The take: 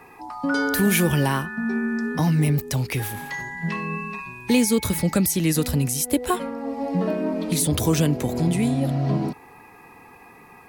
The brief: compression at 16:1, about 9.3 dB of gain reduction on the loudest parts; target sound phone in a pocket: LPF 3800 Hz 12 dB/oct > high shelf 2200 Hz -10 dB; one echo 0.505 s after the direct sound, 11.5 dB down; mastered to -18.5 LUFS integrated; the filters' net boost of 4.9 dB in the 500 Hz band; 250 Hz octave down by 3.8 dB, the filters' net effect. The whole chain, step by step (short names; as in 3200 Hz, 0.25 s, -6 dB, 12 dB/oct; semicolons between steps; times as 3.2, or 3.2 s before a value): bell 250 Hz -7.5 dB; bell 500 Hz +8.5 dB; compressor 16:1, threshold -23 dBFS; LPF 3800 Hz 12 dB/oct; high shelf 2200 Hz -10 dB; echo 0.505 s -11.5 dB; gain +11 dB